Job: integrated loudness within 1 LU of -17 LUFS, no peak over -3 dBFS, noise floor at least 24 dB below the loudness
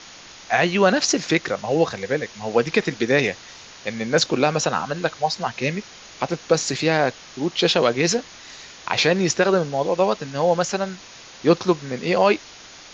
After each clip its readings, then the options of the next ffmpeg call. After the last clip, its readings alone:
noise floor -43 dBFS; noise floor target -46 dBFS; loudness -21.5 LUFS; peak -3.0 dBFS; loudness target -17.0 LUFS
-> -af "afftdn=nr=6:nf=-43"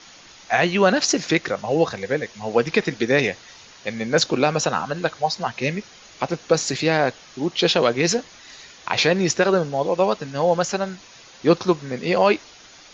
noise floor -47 dBFS; loudness -21.5 LUFS; peak -3.0 dBFS; loudness target -17.0 LUFS
-> -af "volume=4.5dB,alimiter=limit=-3dB:level=0:latency=1"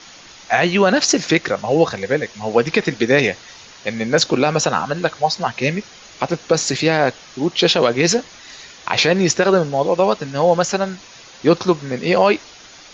loudness -17.5 LUFS; peak -3.0 dBFS; noise floor -42 dBFS

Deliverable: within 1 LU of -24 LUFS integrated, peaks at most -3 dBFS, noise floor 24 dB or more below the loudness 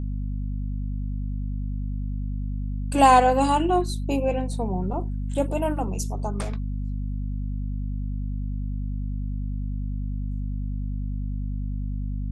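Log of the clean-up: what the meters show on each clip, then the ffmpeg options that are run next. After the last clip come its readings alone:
hum 50 Hz; harmonics up to 250 Hz; hum level -26 dBFS; loudness -27.0 LUFS; peak -4.0 dBFS; loudness target -24.0 LUFS
-> -af "bandreject=f=50:t=h:w=6,bandreject=f=100:t=h:w=6,bandreject=f=150:t=h:w=6,bandreject=f=200:t=h:w=6,bandreject=f=250:t=h:w=6"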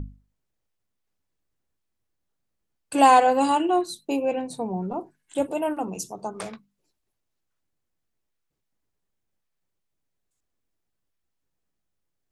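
hum none; loudness -23.0 LUFS; peak -4.5 dBFS; loudness target -24.0 LUFS
-> -af "volume=-1dB"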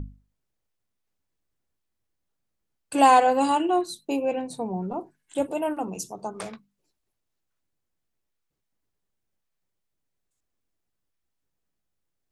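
loudness -24.0 LUFS; peak -5.5 dBFS; noise floor -80 dBFS

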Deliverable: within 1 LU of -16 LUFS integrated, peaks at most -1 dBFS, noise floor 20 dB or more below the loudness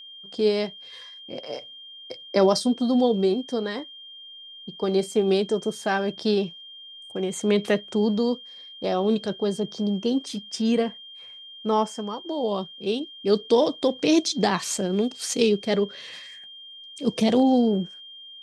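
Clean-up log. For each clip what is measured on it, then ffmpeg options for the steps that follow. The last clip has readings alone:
steady tone 3200 Hz; tone level -41 dBFS; loudness -24.5 LUFS; peak -5.0 dBFS; loudness target -16.0 LUFS
-> -af "bandreject=f=3.2k:w=30"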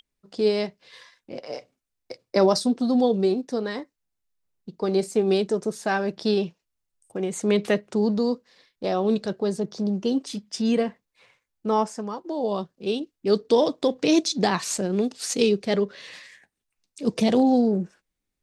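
steady tone none; loudness -24.5 LUFS; peak -5.5 dBFS; loudness target -16.0 LUFS
-> -af "volume=8.5dB,alimiter=limit=-1dB:level=0:latency=1"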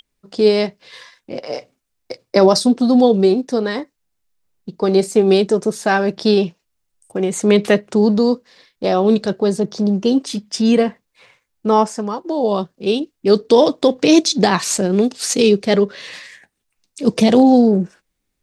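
loudness -16.0 LUFS; peak -1.0 dBFS; noise floor -74 dBFS

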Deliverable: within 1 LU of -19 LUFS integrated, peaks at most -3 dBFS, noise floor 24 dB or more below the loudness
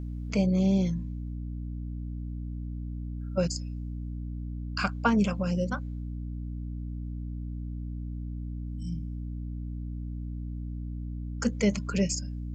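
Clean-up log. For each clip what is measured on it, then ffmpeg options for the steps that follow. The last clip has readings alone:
hum 60 Hz; harmonics up to 300 Hz; hum level -33 dBFS; loudness -32.0 LUFS; peak -9.0 dBFS; loudness target -19.0 LUFS
-> -af "bandreject=f=60:t=h:w=6,bandreject=f=120:t=h:w=6,bandreject=f=180:t=h:w=6,bandreject=f=240:t=h:w=6,bandreject=f=300:t=h:w=6"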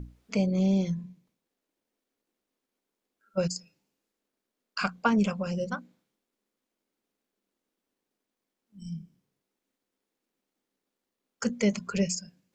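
hum none; loudness -29.5 LUFS; peak -10.0 dBFS; loudness target -19.0 LUFS
-> -af "volume=10.5dB,alimiter=limit=-3dB:level=0:latency=1"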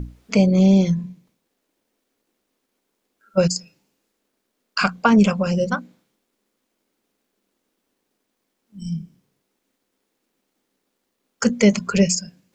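loudness -19.0 LUFS; peak -3.0 dBFS; noise floor -76 dBFS

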